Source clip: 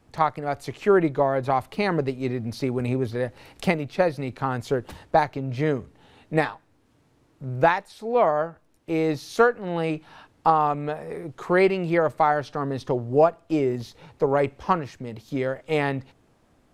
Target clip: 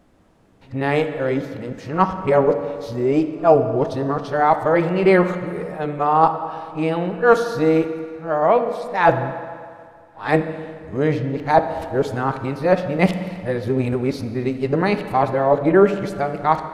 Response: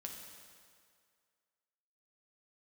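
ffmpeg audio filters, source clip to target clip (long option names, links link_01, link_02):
-filter_complex "[0:a]areverse,asplit=2[link_01][link_02];[1:a]atrim=start_sample=2205,highshelf=frequency=3500:gain=-10.5[link_03];[link_02][link_03]afir=irnorm=-1:irlink=0,volume=5.5dB[link_04];[link_01][link_04]amix=inputs=2:normalize=0,volume=-1.5dB"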